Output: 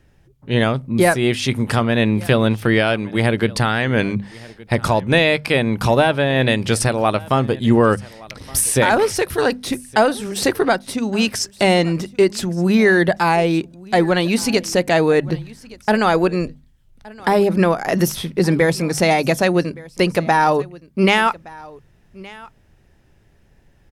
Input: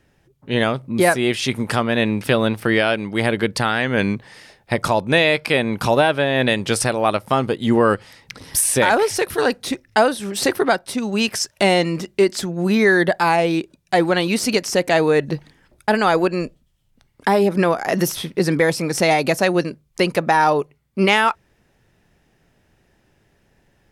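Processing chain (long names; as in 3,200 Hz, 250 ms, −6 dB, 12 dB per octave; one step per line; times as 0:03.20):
low-shelf EQ 130 Hz +12 dB
mains-hum notches 50/100/150/200/250 Hz
on a send: single-tap delay 1,169 ms −22 dB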